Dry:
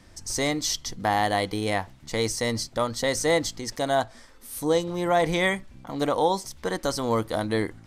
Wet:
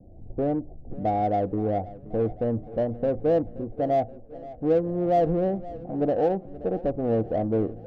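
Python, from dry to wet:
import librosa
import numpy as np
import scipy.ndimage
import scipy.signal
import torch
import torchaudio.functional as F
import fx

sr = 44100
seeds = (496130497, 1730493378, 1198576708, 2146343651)

p1 = scipy.signal.sosfilt(scipy.signal.butter(16, 770.0, 'lowpass', fs=sr, output='sos'), x)
p2 = 10.0 ** (-31.0 / 20.0) * np.tanh(p1 / 10.0 ** (-31.0 / 20.0))
p3 = p1 + (p2 * librosa.db_to_amplitude(-5.0))
y = fx.echo_feedback(p3, sr, ms=526, feedback_pct=55, wet_db=-18.0)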